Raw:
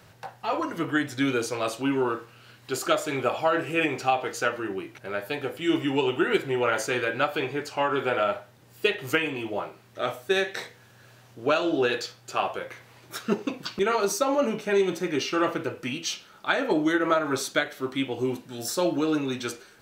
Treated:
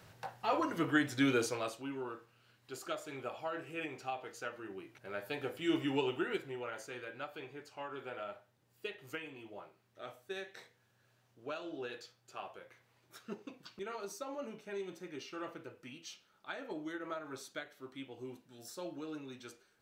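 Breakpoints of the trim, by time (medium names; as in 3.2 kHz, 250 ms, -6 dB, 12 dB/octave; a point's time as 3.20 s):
1.45 s -5 dB
1.86 s -16.5 dB
4.51 s -16.5 dB
5.43 s -8.5 dB
5.97 s -8.5 dB
6.72 s -19 dB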